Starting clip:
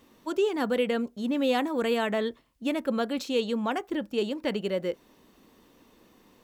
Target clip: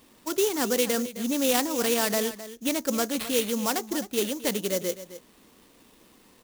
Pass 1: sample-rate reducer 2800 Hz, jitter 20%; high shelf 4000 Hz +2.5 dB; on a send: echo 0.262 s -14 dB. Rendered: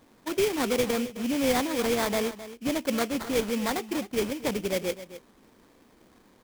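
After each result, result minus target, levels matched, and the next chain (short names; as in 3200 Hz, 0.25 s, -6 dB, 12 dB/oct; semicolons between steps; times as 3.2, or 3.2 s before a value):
8000 Hz band -5.0 dB; sample-rate reducer: distortion +5 dB
sample-rate reducer 2800 Hz, jitter 20%; high shelf 4000 Hz +11.5 dB; on a send: echo 0.262 s -14 dB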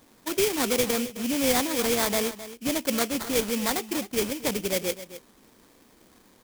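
sample-rate reducer: distortion +5 dB
sample-rate reducer 6500 Hz, jitter 20%; high shelf 4000 Hz +11.5 dB; on a send: echo 0.262 s -14 dB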